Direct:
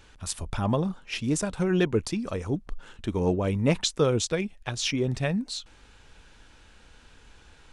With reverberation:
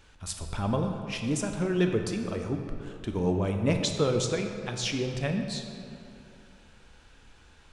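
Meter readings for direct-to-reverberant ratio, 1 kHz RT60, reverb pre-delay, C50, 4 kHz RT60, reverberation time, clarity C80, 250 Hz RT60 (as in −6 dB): 4.0 dB, 2.6 s, 13 ms, 5.0 dB, 1.6 s, 2.7 s, 6.0 dB, 2.6 s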